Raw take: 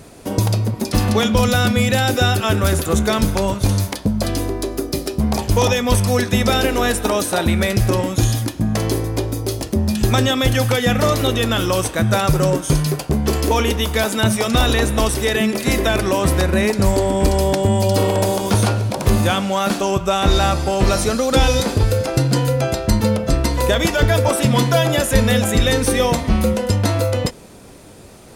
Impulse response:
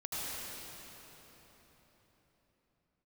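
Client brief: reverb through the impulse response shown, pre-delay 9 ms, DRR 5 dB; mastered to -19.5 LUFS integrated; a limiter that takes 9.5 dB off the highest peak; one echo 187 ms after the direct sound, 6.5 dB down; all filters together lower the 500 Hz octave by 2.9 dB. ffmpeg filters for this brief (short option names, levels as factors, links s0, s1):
-filter_complex "[0:a]equalizer=f=500:t=o:g=-3.5,alimiter=limit=0.224:level=0:latency=1,aecho=1:1:187:0.473,asplit=2[s0][s1];[1:a]atrim=start_sample=2205,adelay=9[s2];[s1][s2]afir=irnorm=-1:irlink=0,volume=0.355[s3];[s0][s3]amix=inputs=2:normalize=0,volume=1.06"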